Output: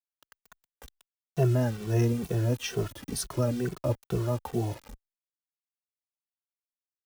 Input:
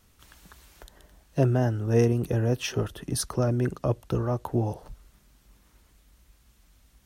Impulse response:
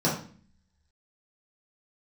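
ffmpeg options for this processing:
-filter_complex "[0:a]acrusher=bits=6:mix=0:aa=0.000001,asplit=2[a][b];[b]adelay=2.2,afreqshift=-2.2[c];[a][c]amix=inputs=2:normalize=1"

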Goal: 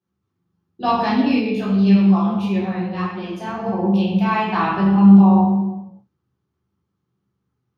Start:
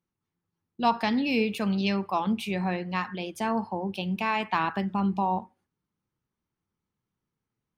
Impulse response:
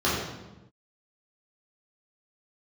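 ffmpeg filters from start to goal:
-filter_complex "[1:a]atrim=start_sample=2205[a];[0:a][a]afir=irnorm=-1:irlink=0,asplit=3[b][c][d];[b]afade=t=out:st=1.39:d=0.02[e];[c]flanger=delay=9.8:depth=6.5:regen=48:speed=1.6:shape=sinusoidal,afade=t=in:st=1.39:d=0.02,afade=t=out:st=3.66:d=0.02[f];[d]afade=t=in:st=3.66:d=0.02[g];[e][f][g]amix=inputs=3:normalize=0,volume=-9dB"

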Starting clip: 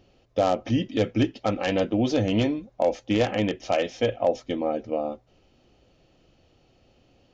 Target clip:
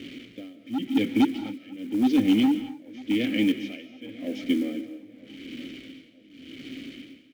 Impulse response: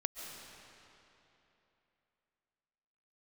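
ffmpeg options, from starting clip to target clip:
-filter_complex "[0:a]aeval=exprs='val(0)+0.5*0.0224*sgn(val(0))':c=same,asplit=3[a][b][c];[a]bandpass=f=270:t=q:w=8,volume=0dB[d];[b]bandpass=f=2.29k:t=q:w=8,volume=-6dB[e];[c]bandpass=f=3.01k:t=q:w=8,volume=-9dB[f];[d][e][f]amix=inputs=3:normalize=0,volume=25.5dB,asoftclip=hard,volume=-25.5dB,acontrast=59,acrusher=bits=7:mode=log:mix=0:aa=0.000001,tremolo=f=0.89:d=0.94,asplit=2[g][h];[h]adelay=949,lowpass=f=1.8k:p=1,volume=-20dB,asplit=2[i][j];[j]adelay=949,lowpass=f=1.8k:p=1,volume=0.44,asplit=2[k][l];[l]adelay=949,lowpass=f=1.8k:p=1,volume=0.44[m];[g][i][k][m]amix=inputs=4:normalize=0,asplit=2[n][o];[1:a]atrim=start_sample=2205,afade=t=out:st=0.32:d=0.01,atrim=end_sample=14553[p];[o][p]afir=irnorm=-1:irlink=0,volume=-0.5dB[q];[n][q]amix=inputs=2:normalize=0"

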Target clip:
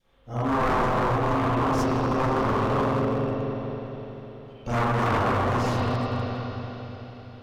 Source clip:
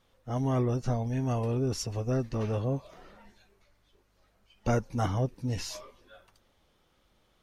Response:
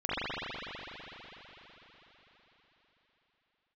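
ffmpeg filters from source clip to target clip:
-filter_complex "[1:a]atrim=start_sample=2205[a];[0:a][a]afir=irnorm=-1:irlink=0,aeval=exprs='0.141*(abs(mod(val(0)/0.141+3,4)-2)-1)':c=same,adynamicequalizer=threshold=0.00631:dfrequency=1100:dqfactor=2.9:tfrequency=1100:tqfactor=2.9:attack=5:release=100:ratio=0.375:range=4:mode=boostabove:tftype=bell,volume=-2.5dB"

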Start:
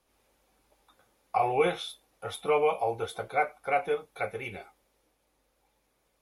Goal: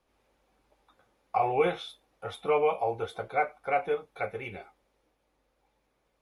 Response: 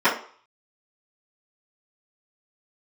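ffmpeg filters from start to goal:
-af "aemphasis=mode=reproduction:type=50kf"

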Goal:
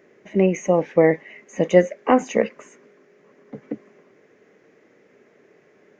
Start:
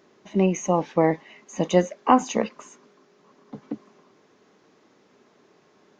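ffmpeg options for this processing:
-af "equalizer=f=125:t=o:w=1:g=3,equalizer=f=500:t=o:w=1:g=9,equalizer=f=1k:t=o:w=1:g=-8,equalizer=f=2k:t=o:w=1:g=12,equalizer=f=4k:t=o:w=1:g=-10,volume=-1dB"

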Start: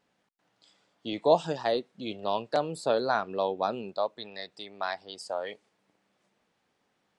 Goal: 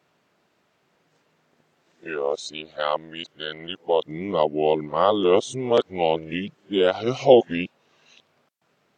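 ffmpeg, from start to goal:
-af "areverse,highpass=f=160:p=1,asetrate=35280,aresample=44100,volume=8dB"

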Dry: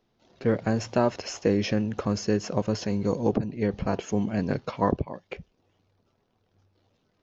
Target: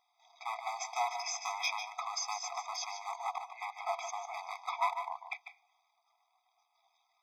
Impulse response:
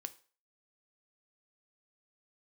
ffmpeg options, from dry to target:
-filter_complex "[0:a]volume=24dB,asoftclip=hard,volume=-24dB,asplit=2[a][b];[1:a]atrim=start_sample=2205,adelay=147[c];[b][c]afir=irnorm=-1:irlink=0,volume=-5.5dB[d];[a][d]amix=inputs=2:normalize=0,afftfilt=real='re*eq(mod(floor(b*sr/1024/650),2),1)':imag='im*eq(mod(floor(b*sr/1024/650),2),1)':win_size=1024:overlap=0.75,volume=3dB"

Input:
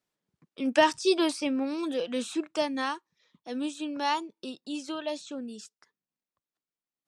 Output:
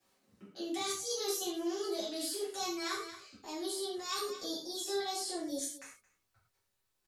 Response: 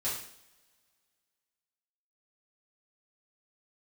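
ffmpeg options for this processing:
-filter_complex "[0:a]acrossover=split=210|3000[a][b][c];[b]acompressor=threshold=-50dB:ratio=2[d];[a][d][c]amix=inputs=3:normalize=0,aecho=1:1:229:0.0891,asetrate=55563,aresample=44100,atempo=0.793701,asubboost=boost=11:cutoff=68,areverse,acompressor=threshold=-48dB:ratio=5,areverse[e];[1:a]atrim=start_sample=2205,atrim=end_sample=6174[f];[e][f]afir=irnorm=-1:irlink=0,volume=8.5dB"

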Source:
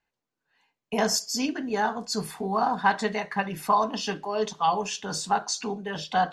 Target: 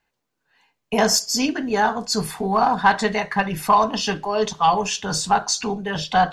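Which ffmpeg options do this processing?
-af "acontrast=86,asubboost=boost=4:cutoff=120,aeval=exprs='0.562*(cos(1*acos(clip(val(0)/0.562,-1,1)))-cos(1*PI/2))+0.00708*(cos(4*acos(clip(val(0)/0.562,-1,1)))-cos(4*PI/2))+0.00398*(cos(5*acos(clip(val(0)/0.562,-1,1)))-cos(5*PI/2))':c=same"

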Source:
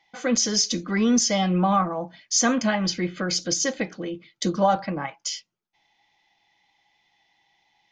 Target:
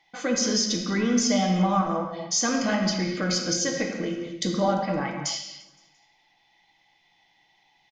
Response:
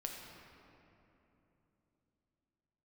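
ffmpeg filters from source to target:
-filter_complex "[0:a]acompressor=threshold=-27dB:ratio=2,aecho=1:1:172|344|516|688:0.0841|0.0454|0.0245|0.0132[a];[1:a]atrim=start_sample=2205,afade=t=out:st=0.34:d=0.01,atrim=end_sample=15435[b];[a][b]afir=irnorm=-1:irlink=0,volume=4.5dB"

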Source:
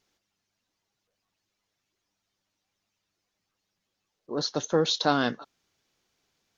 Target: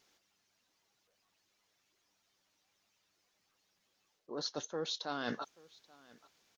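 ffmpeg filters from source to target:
-af "lowshelf=f=220:g=-9.5,areverse,acompressor=threshold=-39dB:ratio=12,areverse,aecho=1:1:832:0.0668,volume=4dB"

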